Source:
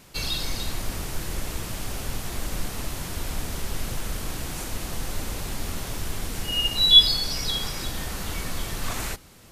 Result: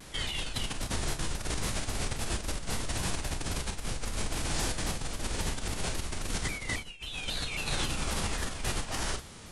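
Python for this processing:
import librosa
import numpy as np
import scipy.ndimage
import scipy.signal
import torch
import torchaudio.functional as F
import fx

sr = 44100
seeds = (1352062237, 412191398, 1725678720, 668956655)

y = fx.over_compress(x, sr, threshold_db=-32.0, ratio=-1.0)
y = fx.room_early_taps(y, sr, ms=(33, 47), db=(-8.5, -12.5))
y = fx.formant_shift(y, sr, semitones=-5)
y = fx.vibrato_shape(y, sr, shape='saw_down', rate_hz=3.7, depth_cents=160.0)
y = F.gain(torch.from_numpy(y), -2.0).numpy()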